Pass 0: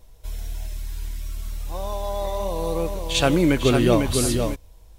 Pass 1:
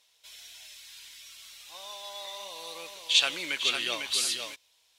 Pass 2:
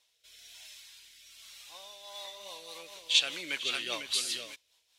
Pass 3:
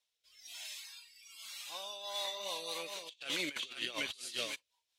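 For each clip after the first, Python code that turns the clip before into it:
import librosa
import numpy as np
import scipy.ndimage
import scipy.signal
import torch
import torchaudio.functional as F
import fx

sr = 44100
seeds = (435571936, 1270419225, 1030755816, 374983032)

y1 = fx.bandpass_q(x, sr, hz=3300.0, q=1.3)
y1 = fx.tilt_eq(y1, sr, slope=2.0)
y2 = fx.rotary_switch(y1, sr, hz=1.1, then_hz=5.0, switch_at_s=1.81)
y2 = y2 * librosa.db_to_amplitude(-1.5)
y3 = fx.noise_reduce_blind(y2, sr, reduce_db=18)
y3 = fx.over_compress(y3, sr, threshold_db=-40.0, ratio=-0.5)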